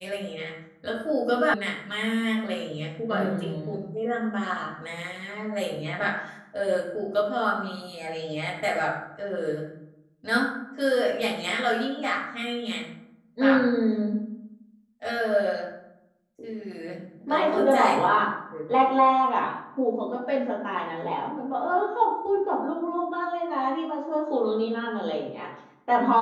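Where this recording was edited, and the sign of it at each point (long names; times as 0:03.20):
0:01.54: cut off before it has died away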